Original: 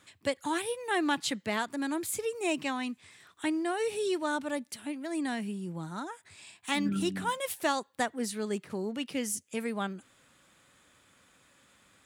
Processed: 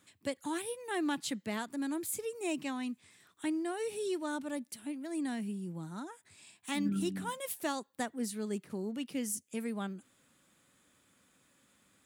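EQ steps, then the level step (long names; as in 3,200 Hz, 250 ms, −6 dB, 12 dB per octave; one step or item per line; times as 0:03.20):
parametric band 230 Hz +7 dB 1.7 octaves
high-shelf EQ 8,100 Hz +10 dB
−8.5 dB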